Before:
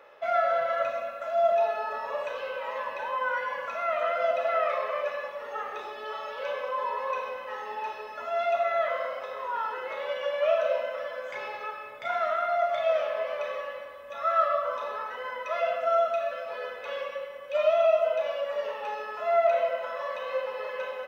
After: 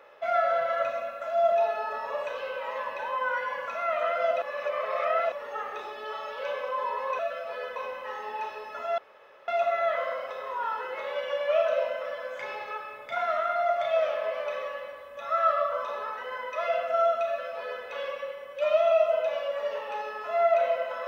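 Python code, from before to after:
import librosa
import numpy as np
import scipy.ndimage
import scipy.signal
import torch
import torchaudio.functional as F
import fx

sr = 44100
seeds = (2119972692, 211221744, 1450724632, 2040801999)

y = fx.edit(x, sr, fx.reverse_span(start_s=4.42, length_s=0.9),
    fx.insert_room_tone(at_s=8.41, length_s=0.5),
    fx.duplicate(start_s=16.2, length_s=0.57, to_s=7.19), tone=tone)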